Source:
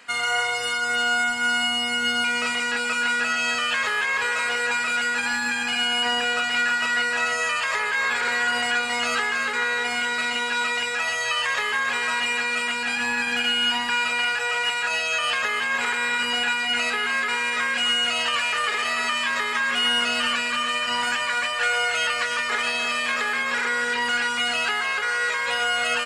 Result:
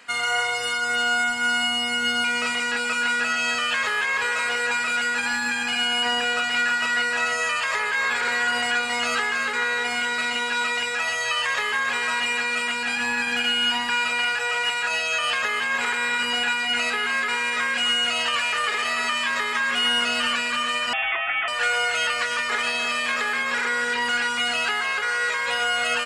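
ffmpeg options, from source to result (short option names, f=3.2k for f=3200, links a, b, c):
-filter_complex "[0:a]asettb=1/sr,asplit=3[a][b][c];[a]atrim=end=20.934[d];[b]atrim=start=20.93:end=21.48,asetpts=PTS-STARTPTS,afade=t=in:d=0.004:c=qsin,afade=t=out:st=0.546:d=0.004:c=qsin,lowpass=f=3.1k:t=q:w=0.5098,lowpass=f=3.1k:t=q:w=0.6013,lowpass=f=3.1k:t=q:w=0.9,lowpass=f=3.1k:t=q:w=2.563,afreqshift=-3700[e];[c]atrim=start=21.476[f];[d][e]acrossfade=d=0.004:c1=hsin:c2=qsin[g];[g][f]acrossfade=d=0.004:c1=qsin:c2=hsin"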